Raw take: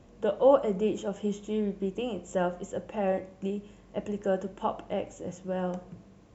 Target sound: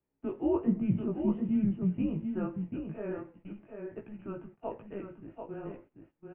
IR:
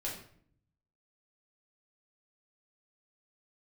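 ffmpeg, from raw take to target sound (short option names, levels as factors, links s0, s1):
-filter_complex "[0:a]flanger=delay=15:depth=5:speed=1.2,highpass=f=300:t=q:w=0.5412,highpass=f=300:t=q:w=1.307,lowpass=f=2700:t=q:w=0.5176,lowpass=f=2700:t=q:w=0.7071,lowpass=f=2700:t=q:w=1.932,afreqshift=-200,asettb=1/sr,asplit=3[s0][s1][s2];[s0]atrim=end=0.664[s3];[s1]atrim=start=0.66:end=2.25,asetpts=PTS-STARTPTS,afade=t=in:d=0.004:c=qsin,afade=t=out:st=1.586:d=0.004:c=qsin,equalizer=f=170:t=o:w=2.4:g=14[s4];[s2]atrim=start=2.246[s5];[s3][s4]acrossfade=d=0.004:c1=hsin:c2=qsin[s6];[s6][s5]acrossfade=d=0.004:c1=qsin:c2=hsin,agate=range=0.126:threshold=0.00501:ratio=16:detection=peak,asplit=2[s7][s8];[s8]aecho=0:1:739:0.501[s9];[s7][s9]amix=inputs=2:normalize=0,volume=0.562"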